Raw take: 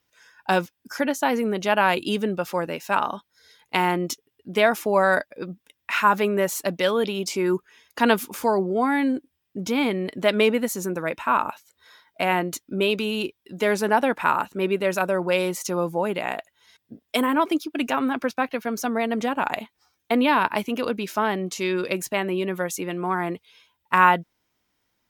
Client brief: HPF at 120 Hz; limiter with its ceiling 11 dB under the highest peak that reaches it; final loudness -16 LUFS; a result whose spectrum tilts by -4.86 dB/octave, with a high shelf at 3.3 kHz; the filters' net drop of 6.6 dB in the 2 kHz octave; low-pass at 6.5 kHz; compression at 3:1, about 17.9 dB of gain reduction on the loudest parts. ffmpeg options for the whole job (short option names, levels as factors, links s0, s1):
-af "highpass=120,lowpass=6500,equalizer=f=2000:t=o:g=-7,highshelf=f=3300:g=-7,acompressor=threshold=0.00891:ratio=3,volume=20,alimiter=limit=0.531:level=0:latency=1"